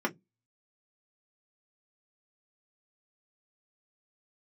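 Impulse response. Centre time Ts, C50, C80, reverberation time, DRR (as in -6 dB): 11 ms, 24.5 dB, 37.0 dB, 0.15 s, -1.0 dB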